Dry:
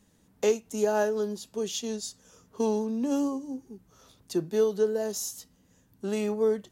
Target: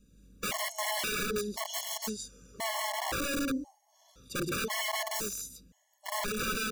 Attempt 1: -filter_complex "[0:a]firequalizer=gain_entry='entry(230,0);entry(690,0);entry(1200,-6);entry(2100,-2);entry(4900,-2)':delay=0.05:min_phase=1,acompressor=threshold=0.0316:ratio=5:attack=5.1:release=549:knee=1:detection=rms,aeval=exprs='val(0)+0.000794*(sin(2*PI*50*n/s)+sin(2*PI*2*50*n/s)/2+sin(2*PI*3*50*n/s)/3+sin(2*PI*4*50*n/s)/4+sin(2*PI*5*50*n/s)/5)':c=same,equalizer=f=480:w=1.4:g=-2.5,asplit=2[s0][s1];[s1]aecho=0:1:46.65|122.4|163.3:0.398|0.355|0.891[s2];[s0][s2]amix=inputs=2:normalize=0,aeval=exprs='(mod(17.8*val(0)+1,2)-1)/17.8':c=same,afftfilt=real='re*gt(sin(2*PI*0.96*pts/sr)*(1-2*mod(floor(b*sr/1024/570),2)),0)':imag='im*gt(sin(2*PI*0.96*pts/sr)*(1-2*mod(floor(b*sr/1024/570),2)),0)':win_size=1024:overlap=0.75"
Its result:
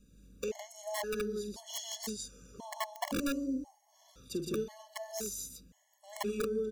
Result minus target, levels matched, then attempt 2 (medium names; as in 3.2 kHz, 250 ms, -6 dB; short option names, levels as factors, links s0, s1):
compression: peak gain reduction +11.5 dB
-filter_complex "[0:a]firequalizer=gain_entry='entry(230,0);entry(690,0);entry(1200,-6);entry(2100,-2);entry(4900,-2)':delay=0.05:min_phase=1,aeval=exprs='val(0)+0.000794*(sin(2*PI*50*n/s)+sin(2*PI*2*50*n/s)/2+sin(2*PI*3*50*n/s)/3+sin(2*PI*4*50*n/s)/4+sin(2*PI*5*50*n/s)/5)':c=same,equalizer=f=480:w=1.4:g=-2.5,asplit=2[s0][s1];[s1]aecho=0:1:46.65|122.4|163.3:0.398|0.355|0.891[s2];[s0][s2]amix=inputs=2:normalize=0,aeval=exprs='(mod(17.8*val(0)+1,2)-1)/17.8':c=same,afftfilt=real='re*gt(sin(2*PI*0.96*pts/sr)*(1-2*mod(floor(b*sr/1024/570),2)),0)':imag='im*gt(sin(2*PI*0.96*pts/sr)*(1-2*mod(floor(b*sr/1024/570),2)),0)':win_size=1024:overlap=0.75"